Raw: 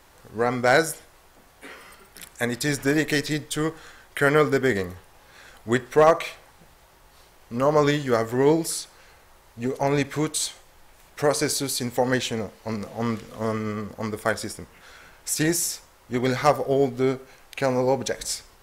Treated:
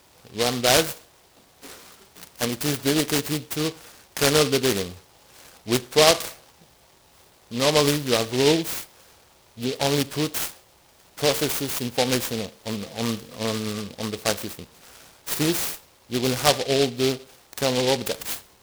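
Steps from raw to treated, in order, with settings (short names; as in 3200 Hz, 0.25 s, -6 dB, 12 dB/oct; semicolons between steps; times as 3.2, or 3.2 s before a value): HPF 77 Hz; noise-modulated delay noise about 3400 Hz, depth 0.15 ms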